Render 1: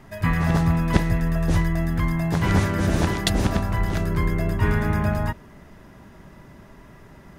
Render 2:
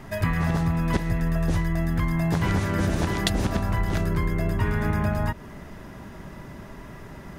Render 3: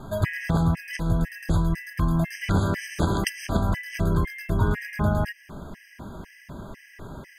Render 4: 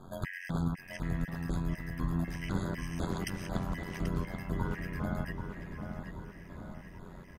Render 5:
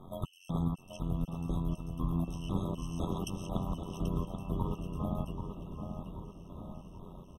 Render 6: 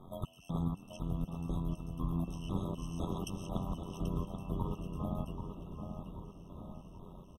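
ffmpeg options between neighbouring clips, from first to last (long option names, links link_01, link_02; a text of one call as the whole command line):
ffmpeg -i in.wav -af "acompressor=threshold=-26dB:ratio=6,volume=5.5dB" out.wav
ffmpeg -i in.wav -af "afftfilt=real='re*gt(sin(2*PI*2*pts/sr)*(1-2*mod(floor(b*sr/1024/1600),2)),0)':imag='im*gt(sin(2*PI*2*pts/sr)*(1-2*mod(floor(b*sr/1024/1600),2)),0)':win_size=1024:overlap=0.75,volume=2.5dB" out.wav
ffmpeg -i in.wav -filter_complex "[0:a]aecho=1:1:5.4:0.38,tremolo=f=89:d=0.824,asplit=2[link_01][link_02];[link_02]adelay=784,lowpass=frequency=3400:poles=1,volume=-6.5dB,asplit=2[link_03][link_04];[link_04]adelay=784,lowpass=frequency=3400:poles=1,volume=0.53,asplit=2[link_05][link_06];[link_06]adelay=784,lowpass=frequency=3400:poles=1,volume=0.53,asplit=2[link_07][link_08];[link_08]adelay=784,lowpass=frequency=3400:poles=1,volume=0.53,asplit=2[link_09][link_10];[link_10]adelay=784,lowpass=frequency=3400:poles=1,volume=0.53,asplit=2[link_11][link_12];[link_12]adelay=784,lowpass=frequency=3400:poles=1,volume=0.53,asplit=2[link_13][link_14];[link_14]adelay=784,lowpass=frequency=3400:poles=1,volume=0.53[link_15];[link_01][link_03][link_05][link_07][link_09][link_11][link_13][link_15]amix=inputs=8:normalize=0,volume=-8dB" out.wav
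ffmpeg -i in.wav -af "afftfilt=real='re*eq(mod(floor(b*sr/1024/1300),2),0)':imag='im*eq(mod(floor(b*sr/1024/1300),2),0)':win_size=1024:overlap=0.75" out.wav
ffmpeg -i in.wav -filter_complex "[0:a]asplit=5[link_01][link_02][link_03][link_04][link_05];[link_02]adelay=151,afreqshift=35,volume=-22dB[link_06];[link_03]adelay=302,afreqshift=70,volume=-26.6dB[link_07];[link_04]adelay=453,afreqshift=105,volume=-31.2dB[link_08];[link_05]adelay=604,afreqshift=140,volume=-35.7dB[link_09];[link_01][link_06][link_07][link_08][link_09]amix=inputs=5:normalize=0,volume=-2.5dB" out.wav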